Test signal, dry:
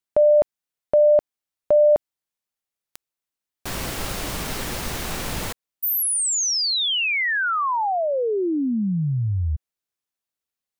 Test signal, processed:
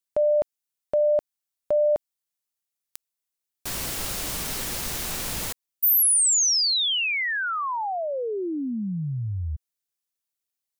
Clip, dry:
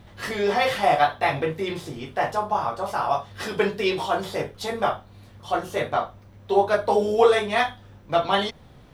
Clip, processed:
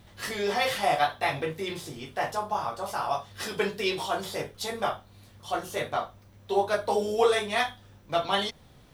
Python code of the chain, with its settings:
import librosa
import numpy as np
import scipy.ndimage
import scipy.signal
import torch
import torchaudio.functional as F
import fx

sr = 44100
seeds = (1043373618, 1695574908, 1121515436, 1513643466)

y = fx.high_shelf(x, sr, hz=3700.0, db=10.0)
y = y * librosa.db_to_amplitude(-6.0)